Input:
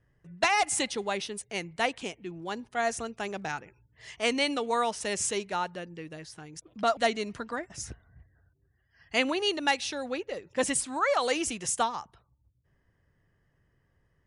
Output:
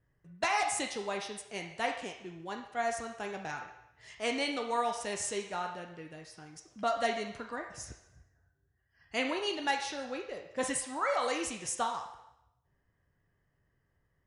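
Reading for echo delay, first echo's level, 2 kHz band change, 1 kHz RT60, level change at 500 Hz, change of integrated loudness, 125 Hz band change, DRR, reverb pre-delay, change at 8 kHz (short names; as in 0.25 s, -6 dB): none, none, -5.0 dB, 0.80 s, -4.5 dB, -5.0 dB, -5.5 dB, 2.0 dB, 5 ms, -5.5 dB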